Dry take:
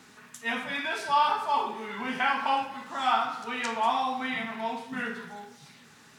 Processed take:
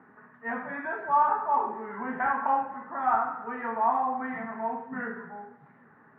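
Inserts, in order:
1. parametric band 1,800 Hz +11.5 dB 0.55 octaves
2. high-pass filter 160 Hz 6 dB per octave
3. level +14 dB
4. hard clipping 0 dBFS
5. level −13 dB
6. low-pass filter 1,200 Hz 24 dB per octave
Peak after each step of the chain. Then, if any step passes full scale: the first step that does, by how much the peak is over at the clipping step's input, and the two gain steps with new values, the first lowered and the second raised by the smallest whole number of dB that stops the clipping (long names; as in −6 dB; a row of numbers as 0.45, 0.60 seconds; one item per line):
−6.0, −6.0, +8.0, 0.0, −13.0, −13.0 dBFS
step 3, 8.0 dB
step 3 +6 dB, step 5 −5 dB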